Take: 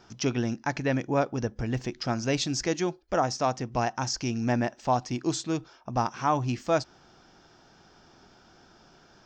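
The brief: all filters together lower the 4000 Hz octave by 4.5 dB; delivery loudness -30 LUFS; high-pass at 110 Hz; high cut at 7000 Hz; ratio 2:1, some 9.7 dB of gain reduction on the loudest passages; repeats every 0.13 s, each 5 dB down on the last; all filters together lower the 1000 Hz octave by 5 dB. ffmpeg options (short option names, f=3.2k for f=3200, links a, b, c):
-af "highpass=110,lowpass=7k,equalizer=f=1k:t=o:g=-7,equalizer=f=4k:t=o:g=-5,acompressor=threshold=-41dB:ratio=2,aecho=1:1:130|260|390|520|650|780|910:0.562|0.315|0.176|0.0988|0.0553|0.031|0.0173,volume=8dB"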